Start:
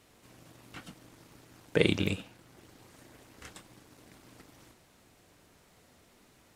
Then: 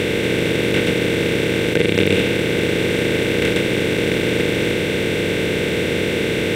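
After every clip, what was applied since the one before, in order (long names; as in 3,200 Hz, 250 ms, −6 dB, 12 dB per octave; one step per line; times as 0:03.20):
compressor on every frequency bin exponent 0.2
boost into a limiter +10 dB
level −1 dB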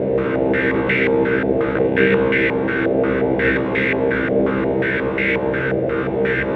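tuned comb filter 66 Hz, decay 0.38 s, harmonics all, mix 100%
low-pass on a step sequencer 5.6 Hz 670–2,000 Hz
level +7.5 dB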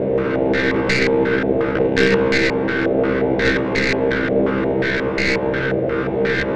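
stylus tracing distortion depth 0.15 ms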